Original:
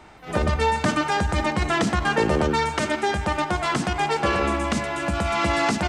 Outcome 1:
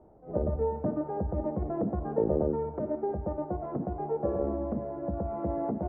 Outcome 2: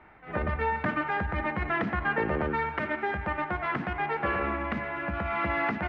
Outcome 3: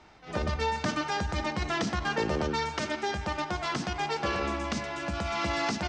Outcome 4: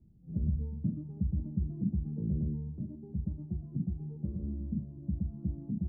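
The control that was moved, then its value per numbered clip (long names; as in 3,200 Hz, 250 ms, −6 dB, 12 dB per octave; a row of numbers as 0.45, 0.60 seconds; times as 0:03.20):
transistor ladder low-pass, frequency: 680, 2,400, 6,700, 210 Hertz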